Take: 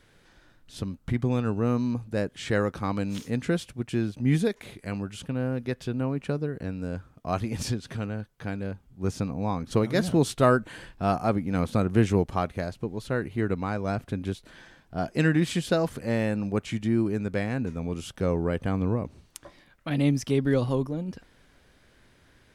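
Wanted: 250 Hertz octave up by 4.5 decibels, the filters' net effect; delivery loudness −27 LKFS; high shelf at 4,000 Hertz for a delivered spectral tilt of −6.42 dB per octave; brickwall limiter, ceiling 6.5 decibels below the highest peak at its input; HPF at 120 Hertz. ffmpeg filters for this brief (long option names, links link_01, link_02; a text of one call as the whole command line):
ffmpeg -i in.wav -af "highpass=120,equalizer=frequency=250:width_type=o:gain=6,highshelf=frequency=4000:gain=6.5,volume=-1dB,alimiter=limit=-12.5dB:level=0:latency=1" out.wav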